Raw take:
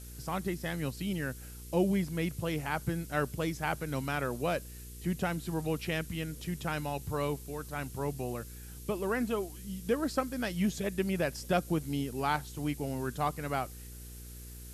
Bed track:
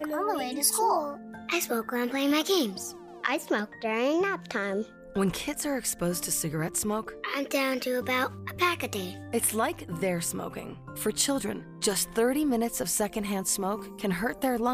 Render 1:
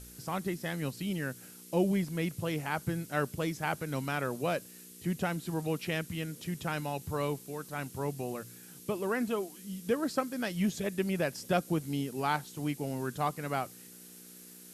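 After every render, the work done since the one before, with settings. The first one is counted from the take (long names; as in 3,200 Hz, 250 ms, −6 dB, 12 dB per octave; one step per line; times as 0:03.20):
hum removal 60 Hz, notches 2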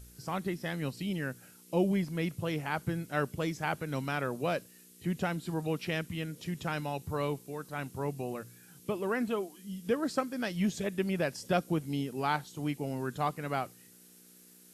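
noise reduction from a noise print 6 dB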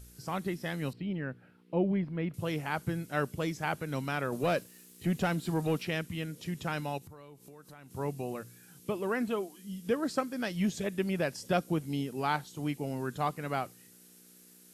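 0:00.93–0:02.34: high-frequency loss of the air 450 metres
0:04.32–0:05.83: leveller curve on the samples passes 1
0:06.98–0:07.91: downward compressor 10 to 1, threshold −47 dBFS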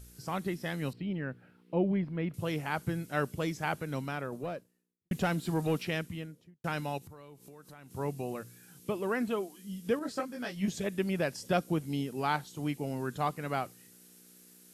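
0:03.67–0:05.11: fade out and dull
0:05.93–0:06.64: fade out and dull
0:09.99–0:10.68: micro pitch shift up and down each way 13 cents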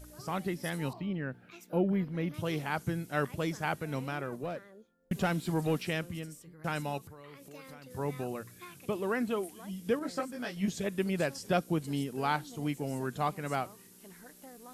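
mix in bed track −24.5 dB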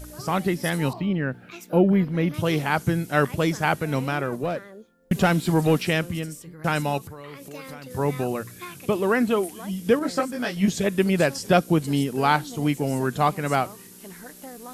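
level +10.5 dB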